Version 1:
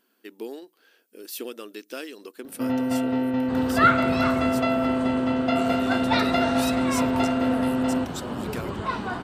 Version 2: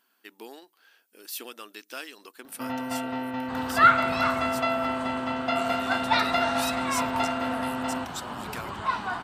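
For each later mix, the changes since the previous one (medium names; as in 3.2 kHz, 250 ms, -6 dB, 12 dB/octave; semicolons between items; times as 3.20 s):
master: add resonant low shelf 630 Hz -8 dB, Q 1.5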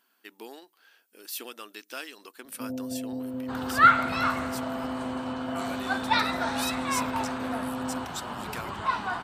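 first sound: add Chebyshev low-pass 600 Hz, order 5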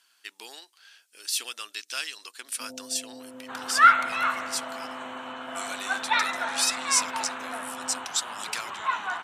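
second sound: add boxcar filter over 9 samples; master: add frequency weighting ITU-R 468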